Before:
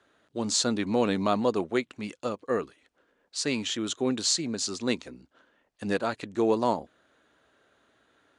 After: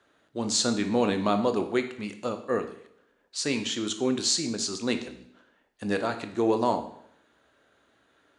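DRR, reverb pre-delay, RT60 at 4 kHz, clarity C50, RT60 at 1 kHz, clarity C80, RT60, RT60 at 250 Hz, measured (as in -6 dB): 7.0 dB, 18 ms, 0.70 s, 10.5 dB, 0.70 s, 13.5 dB, 0.70 s, 0.70 s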